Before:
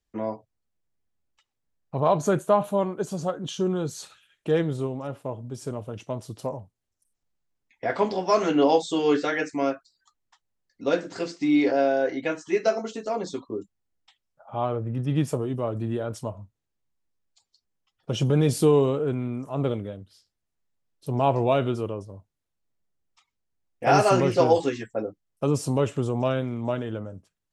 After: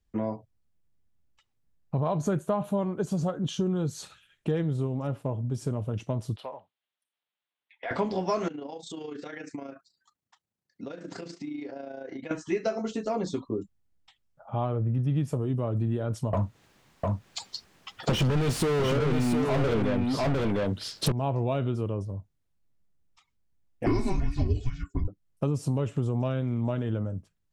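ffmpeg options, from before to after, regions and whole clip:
ffmpeg -i in.wav -filter_complex "[0:a]asettb=1/sr,asplit=3[link_01][link_02][link_03];[link_01]atrim=end=6.364[link_04];[link_02]atrim=start=6.36:end=7.91,asetpts=PTS-STARTPTS,afade=type=in:duration=0.004:curve=qsin,afade=type=out:start_time=1.546:duration=0.004:curve=qsin,highpass=770,highshelf=frequency=4700:width_type=q:width=3:gain=-11.5,acompressor=threshold=-34dB:ratio=2:attack=3.2:release=140:knee=1:detection=peak[link_05];[link_03]atrim=start=7.906[link_06];[link_04][link_05]acrossfade=duration=0.004:curve1=hsin:curve2=qsin[link_07];[link_07][link_06]acrossfade=duration=0.004:curve1=qsin:curve2=hsin,asettb=1/sr,asplit=3[link_08][link_09][link_10];[link_08]atrim=end=8.484[link_11];[link_09]atrim=start=8.48:end=12.31,asetpts=PTS-STARTPTS,afade=type=in:duration=0.004:curve=qsin,afade=type=out:start_time=3.826:duration=0.004:curve=qsin,acompressor=threshold=-34dB:ratio=12:attack=3.2:release=140:knee=1:detection=peak,highpass=140,tremolo=f=28:d=0.571[link_12];[link_10]atrim=start=12.306[link_13];[link_11][link_12]acrossfade=duration=0.004:curve1=hsin:curve2=qsin[link_14];[link_14][link_13]acrossfade=duration=0.004:curve1=qsin:curve2=hsin,asettb=1/sr,asplit=3[link_15][link_16][link_17];[link_15]atrim=end=16.334[link_18];[link_16]atrim=start=16.33:end=21.12,asetpts=PTS-STARTPTS,afade=type=in:duration=0.004:curve=qsin,afade=type=out:start_time=4.786:duration=0.004:curve=qsin,asplit=2[link_19][link_20];[link_20]highpass=frequency=720:poles=1,volume=39dB,asoftclip=type=tanh:threshold=-8.5dB[link_21];[link_19][link_21]amix=inputs=2:normalize=0,lowpass=frequency=3400:poles=1,volume=-6dB,aecho=1:1:704:0.596,atrim=end_sample=211239[link_22];[link_17]atrim=start=21.116[link_23];[link_18][link_22]acrossfade=duration=0.004:curve1=hsin:curve2=qsin[link_24];[link_24][link_23]acrossfade=duration=0.004:curve1=qsin:curve2=hsin,asettb=1/sr,asplit=3[link_25][link_26][link_27];[link_25]atrim=end=23.864[link_28];[link_26]atrim=start=23.86:end=25.08,asetpts=PTS-STARTPTS,afade=type=in:duration=0.004:curve=qsin,afade=type=out:start_time=1.216:duration=0.004:curve=qsin,aecho=1:1:2.7:0.78,atrim=end_sample=53802,afreqshift=-400[link_29];[link_27]atrim=start=25.076[link_30];[link_28][link_29]acrossfade=duration=0.004:curve1=hsin:curve2=qsin[link_31];[link_31][link_30]acrossfade=duration=0.004:curve1=qsin:curve2=hsin,bass=frequency=250:gain=9,treble=frequency=4000:gain=-2,acompressor=threshold=-25dB:ratio=4" out.wav

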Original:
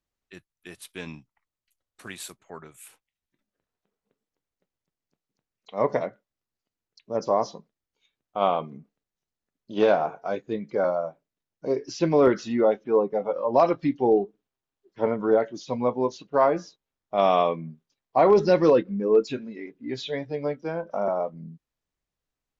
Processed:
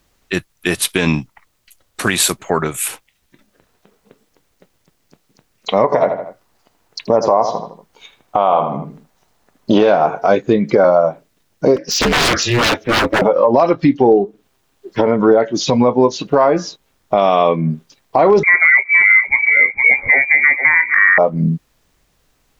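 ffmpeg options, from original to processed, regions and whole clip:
ffmpeg -i in.wav -filter_complex "[0:a]asettb=1/sr,asplit=3[link_01][link_02][link_03];[link_01]atrim=end=5.844[link_04];[link_02]atrim=start=5.84:end=9.81,asetpts=PTS-STARTPTS,afade=type=in:duration=0.004:curve=qsin,afade=type=out:start_time=3.966:duration=0.004:curve=qsin,equalizer=frequency=860:width_type=o:width=1.5:gain=9,asplit=2[link_05][link_06];[link_06]adelay=79,lowpass=frequency=3100:poles=1,volume=-11.5dB,asplit=2[link_07][link_08];[link_08]adelay=79,lowpass=frequency=3100:poles=1,volume=0.32,asplit=2[link_09][link_10];[link_10]adelay=79,lowpass=frequency=3100:poles=1,volume=0.32[link_11];[link_05][link_07][link_09][link_11]amix=inputs=4:normalize=0,atrim=end_sample=175077[link_12];[link_03]atrim=start=9.806[link_13];[link_04][link_12]acrossfade=duration=0.004:curve1=hsin:curve2=qsin[link_14];[link_14][link_13]acrossfade=duration=0.004:curve1=qsin:curve2=hsin,asettb=1/sr,asplit=3[link_15][link_16][link_17];[link_15]atrim=end=11.764[link_18];[link_16]atrim=start=11.76:end=13.22,asetpts=PTS-STARTPTS,afade=type=in:duration=0.004:curve=qsin,afade=type=out:start_time=1.456:duration=0.004:curve=qsin,highpass=frequency=870:poles=1,aeval=exprs='0.0251*(abs(mod(val(0)/0.0251+3,4)-2)-1)':channel_layout=same,aeval=exprs='val(0)*sin(2*PI*120*n/s)':channel_layout=same[link_19];[link_17]atrim=start=13.216[link_20];[link_18][link_19]acrossfade=duration=0.004:curve1=hsin:curve2=qsin[link_21];[link_21][link_20]acrossfade=duration=0.004:curve1=qsin:curve2=hsin,asettb=1/sr,asplit=3[link_22][link_23][link_24];[link_22]atrim=end=18.434[link_25];[link_23]atrim=start=18.43:end=21.18,asetpts=PTS-STARTPTS,afade=type=in:duration=0.004:curve=qsin,afade=type=out:start_time=2.746:duration=0.004:curve=qsin,aecho=1:1:463:0.211,atrim=end_sample=121275,lowpass=frequency=2100:width_type=q:width=0.5098,lowpass=frequency=2100:width_type=q:width=0.6013,lowpass=frequency=2100:width_type=q:width=0.9,lowpass=frequency=2100:width_type=q:width=2.563,afreqshift=-2500[link_26];[link_24]atrim=start=21.176[link_27];[link_25][link_26]acrossfade=duration=0.004:curve1=hsin:curve2=qsin[link_28];[link_28][link_27]acrossfade=duration=0.004:curve1=qsin:curve2=hsin,acompressor=threshold=-34dB:ratio=8,alimiter=level_in=27.5dB:limit=-1dB:release=50:level=0:latency=1,volume=-1dB" out.wav

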